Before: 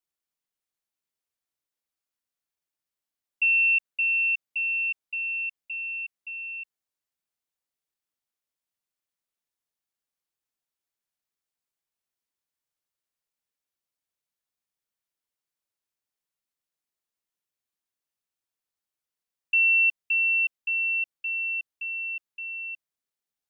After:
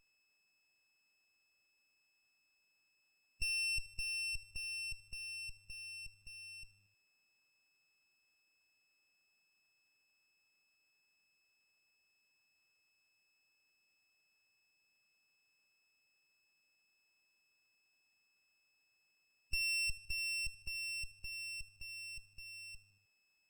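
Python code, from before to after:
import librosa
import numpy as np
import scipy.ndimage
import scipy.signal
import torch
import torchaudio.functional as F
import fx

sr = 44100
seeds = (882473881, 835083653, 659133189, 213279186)

p1 = fx.spec_quant(x, sr, step_db=15)
p2 = fx.peak_eq(p1, sr, hz=2600.0, db=-12.0, octaves=1.2)
p3 = p2 + 10.0 ** (-72.0 / 20.0) * np.sin(2.0 * np.pi * 2600.0 * np.arange(len(p2)) / sr)
p4 = p3 + fx.echo_feedback(p3, sr, ms=77, feedback_pct=55, wet_db=-20.5, dry=0)
p5 = fx.running_max(p4, sr, window=9)
y = p5 * 10.0 ** (3.0 / 20.0)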